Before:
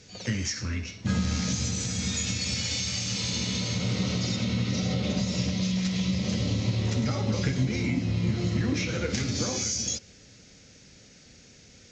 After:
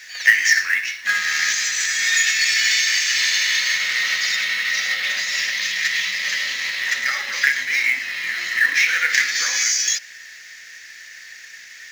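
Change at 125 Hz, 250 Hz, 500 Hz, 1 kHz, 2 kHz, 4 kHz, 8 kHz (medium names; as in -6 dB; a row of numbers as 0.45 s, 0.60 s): under -30 dB, under -25 dB, -11.5 dB, +7.0 dB, +22.0 dB, +11.0 dB, +10.0 dB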